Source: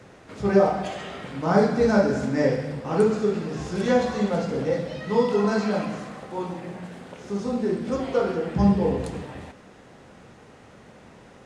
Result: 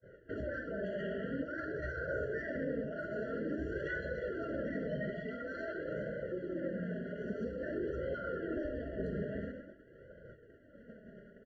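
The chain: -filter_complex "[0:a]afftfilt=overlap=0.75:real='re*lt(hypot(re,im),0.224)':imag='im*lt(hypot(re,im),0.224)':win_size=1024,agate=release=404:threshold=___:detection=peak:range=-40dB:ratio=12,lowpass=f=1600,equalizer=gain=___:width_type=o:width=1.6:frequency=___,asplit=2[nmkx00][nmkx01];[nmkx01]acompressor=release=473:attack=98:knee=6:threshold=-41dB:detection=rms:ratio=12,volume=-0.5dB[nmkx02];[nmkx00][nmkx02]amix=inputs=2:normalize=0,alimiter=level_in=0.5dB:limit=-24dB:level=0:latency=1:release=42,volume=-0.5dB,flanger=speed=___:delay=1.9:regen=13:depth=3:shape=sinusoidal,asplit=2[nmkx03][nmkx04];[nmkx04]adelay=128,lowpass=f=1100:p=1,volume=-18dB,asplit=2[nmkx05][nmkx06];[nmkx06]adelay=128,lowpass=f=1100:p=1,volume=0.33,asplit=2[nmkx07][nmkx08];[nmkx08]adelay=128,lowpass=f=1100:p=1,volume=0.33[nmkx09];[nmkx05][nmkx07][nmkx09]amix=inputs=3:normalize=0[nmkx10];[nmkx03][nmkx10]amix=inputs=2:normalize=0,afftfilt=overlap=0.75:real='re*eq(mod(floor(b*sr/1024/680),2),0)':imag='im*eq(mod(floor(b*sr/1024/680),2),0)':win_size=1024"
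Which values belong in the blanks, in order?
-45dB, 5, 950, 0.49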